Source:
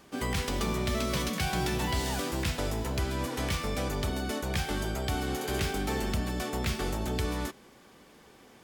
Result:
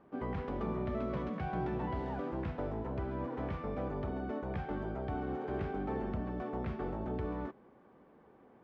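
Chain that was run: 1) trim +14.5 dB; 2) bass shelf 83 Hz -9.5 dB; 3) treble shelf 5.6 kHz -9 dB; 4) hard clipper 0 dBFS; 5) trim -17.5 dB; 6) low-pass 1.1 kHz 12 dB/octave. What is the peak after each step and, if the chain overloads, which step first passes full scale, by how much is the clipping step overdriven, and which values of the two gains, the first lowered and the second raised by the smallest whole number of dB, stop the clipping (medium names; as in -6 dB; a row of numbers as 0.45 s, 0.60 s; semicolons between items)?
-3.5 dBFS, -4.0 dBFS, -5.5 dBFS, -5.5 dBFS, -23.0 dBFS, -25.0 dBFS; nothing clips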